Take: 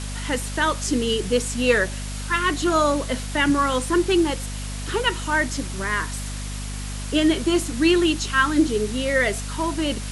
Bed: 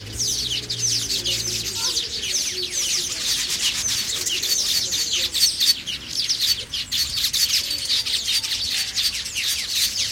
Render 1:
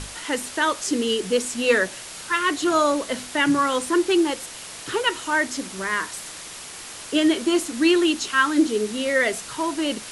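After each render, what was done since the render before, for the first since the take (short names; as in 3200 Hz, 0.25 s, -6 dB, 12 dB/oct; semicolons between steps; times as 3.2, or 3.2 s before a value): notches 50/100/150/200/250 Hz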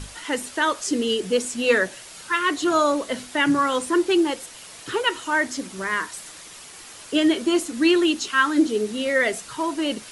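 denoiser 6 dB, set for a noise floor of -38 dBFS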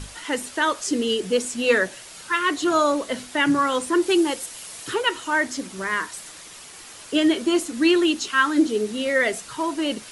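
4.02–4.94 high shelf 7200 Hz +9 dB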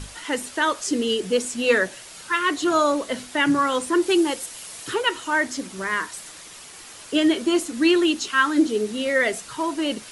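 nothing audible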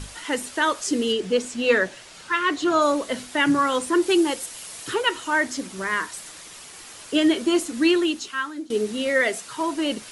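1.12–2.82 air absorption 55 m; 7.79–8.7 fade out, to -22 dB; 9.21–9.61 HPF 200 Hz 6 dB/oct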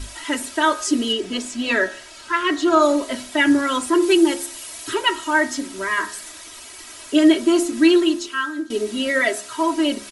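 comb 3.1 ms, depth 100%; de-hum 69.22 Hz, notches 27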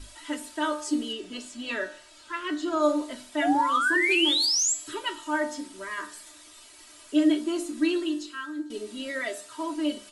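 3.42–4.74 painted sound rise 650–7900 Hz -13 dBFS; resonator 300 Hz, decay 0.37 s, harmonics all, mix 80%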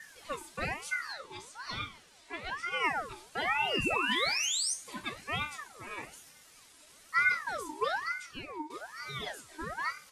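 flange 1.2 Hz, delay 7.1 ms, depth 4.1 ms, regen +77%; ring modulator with a swept carrier 1200 Hz, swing 50%, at 1.1 Hz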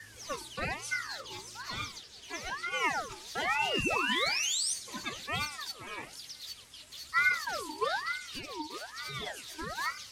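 add bed -24 dB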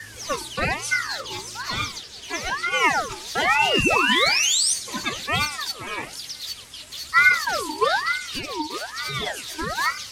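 gain +11 dB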